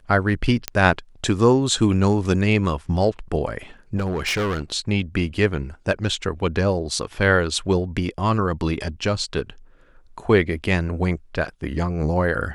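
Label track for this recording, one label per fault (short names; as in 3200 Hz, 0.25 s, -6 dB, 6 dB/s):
0.680000	0.680000	pop -5 dBFS
3.960000	4.620000	clipped -19.5 dBFS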